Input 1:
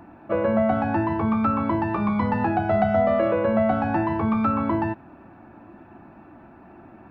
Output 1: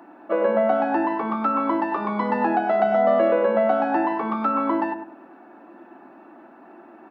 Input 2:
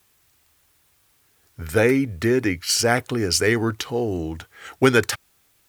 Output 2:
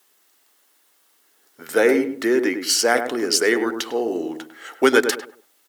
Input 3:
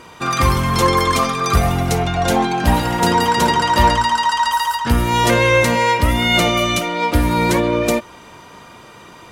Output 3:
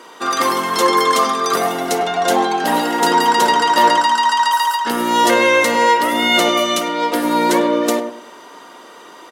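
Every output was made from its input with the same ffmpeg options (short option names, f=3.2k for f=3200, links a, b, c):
-filter_complex "[0:a]highpass=f=270:w=0.5412,highpass=f=270:w=1.3066,bandreject=f=2.4k:w=11,asplit=2[a][b];[b]adelay=101,lowpass=f=970:p=1,volume=-5.5dB,asplit=2[c][d];[d]adelay=101,lowpass=f=970:p=1,volume=0.32,asplit=2[e][f];[f]adelay=101,lowpass=f=970:p=1,volume=0.32,asplit=2[g][h];[h]adelay=101,lowpass=f=970:p=1,volume=0.32[i];[c][e][g][i]amix=inputs=4:normalize=0[j];[a][j]amix=inputs=2:normalize=0,volume=1.5dB"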